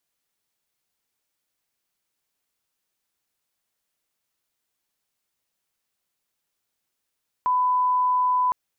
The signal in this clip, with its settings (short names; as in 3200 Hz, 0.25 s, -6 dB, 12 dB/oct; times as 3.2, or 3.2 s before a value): line-up tone -18 dBFS 1.06 s